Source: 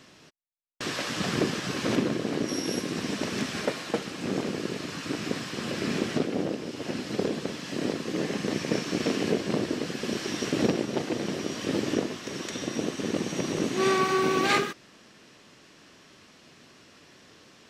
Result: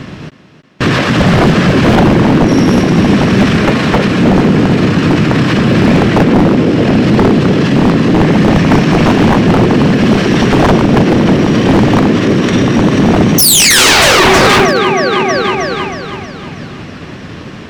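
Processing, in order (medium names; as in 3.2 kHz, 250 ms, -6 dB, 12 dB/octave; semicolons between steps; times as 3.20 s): tone controls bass +12 dB, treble -14 dB; painted sound fall, 13.38–14.25 s, 330–6200 Hz -17 dBFS; thinning echo 317 ms, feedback 56%, high-pass 150 Hz, level -9 dB; wavefolder -19.5 dBFS; loudness maximiser +31 dB; upward expansion 1.5:1, over -26 dBFS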